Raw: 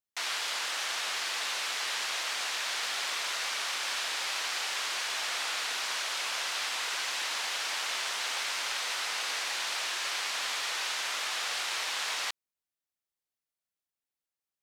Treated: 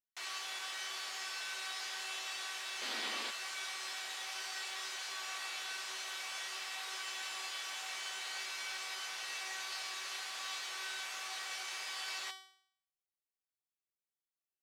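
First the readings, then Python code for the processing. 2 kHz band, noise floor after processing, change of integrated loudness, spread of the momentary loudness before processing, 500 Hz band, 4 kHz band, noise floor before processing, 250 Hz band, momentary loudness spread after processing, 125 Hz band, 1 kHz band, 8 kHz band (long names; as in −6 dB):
−8.5 dB, below −85 dBFS, −9.0 dB, 0 LU, −10.0 dB, −9.0 dB, below −85 dBFS, −4.0 dB, 1 LU, can't be measured, −9.0 dB, −9.0 dB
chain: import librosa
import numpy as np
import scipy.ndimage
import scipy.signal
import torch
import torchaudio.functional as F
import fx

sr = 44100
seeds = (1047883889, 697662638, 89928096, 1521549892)

y = fx.comb_fb(x, sr, f0_hz=380.0, decay_s=0.6, harmonics='all', damping=0.0, mix_pct=90)
y = fx.spec_paint(y, sr, seeds[0], shape='noise', start_s=2.81, length_s=0.5, low_hz=210.0, high_hz=5000.0, level_db=-49.0)
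y = F.gain(torch.from_numpy(y), 6.5).numpy()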